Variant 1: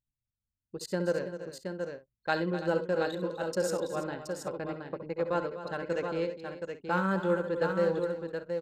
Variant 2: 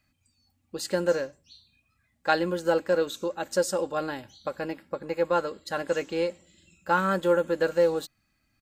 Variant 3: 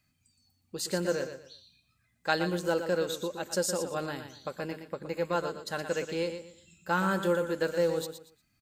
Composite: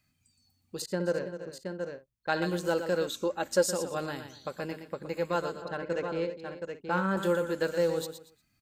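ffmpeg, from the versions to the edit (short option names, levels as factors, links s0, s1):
-filter_complex "[0:a]asplit=2[s0][s1];[2:a]asplit=4[s2][s3][s4][s5];[s2]atrim=end=0.822[s6];[s0]atrim=start=0.818:end=2.422[s7];[s3]atrim=start=2.418:end=3.082[s8];[1:a]atrim=start=3.078:end=3.652[s9];[s4]atrim=start=3.648:end=5.622[s10];[s1]atrim=start=5.618:end=7.172[s11];[s5]atrim=start=7.168[s12];[s6][s7]acrossfade=d=0.004:c1=hsin:c2=hsin[s13];[s13][s8]acrossfade=d=0.004:c1=hsin:c2=hsin[s14];[s14][s9]acrossfade=d=0.004:c1=hsin:c2=hsin[s15];[s15][s10]acrossfade=d=0.004:c1=hsin:c2=hsin[s16];[s16][s11]acrossfade=d=0.004:c1=hsin:c2=hsin[s17];[s17][s12]acrossfade=d=0.004:c1=hsin:c2=hsin"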